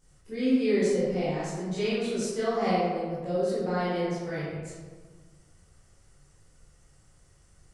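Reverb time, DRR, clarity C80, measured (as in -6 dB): 1.5 s, -12.0 dB, 0.5 dB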